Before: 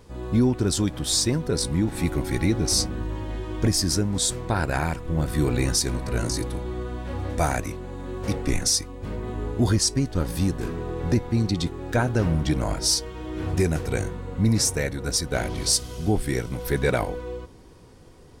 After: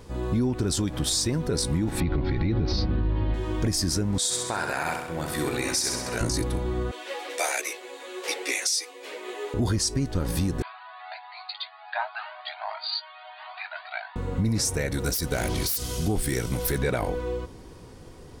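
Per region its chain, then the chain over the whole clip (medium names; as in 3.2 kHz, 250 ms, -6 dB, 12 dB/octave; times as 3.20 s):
2.00–3.34 s: steep low-pass 4.6 kHz 48 dB/octave + bass shelf 220 Hz +7.5 dB
4.18–6.21 s: high-pass 780 Hz 6 dB/octave + feedback delay 65 ms, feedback 54%, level -6 dB
6.91–9.54 s: steep high-pass 380 Hz + resonant high shelf 1.7 kHz +7.5 dB, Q 1.5 + three-phase chorus
10.62–14.16 s: brick-wall FIR band-pass 610–4800 Hz + doubling 20 ms -12 dB + Shepard-style flanger rising 1.4 Hz
14.92–16.78 s: self-modulated delay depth 0.054 ms + treble shelf 4.7 kHz +11 dB
whole clip: peak limiter -17.5 dBFS; compression 2:1, threshold -28 dBFS; trim +4 dB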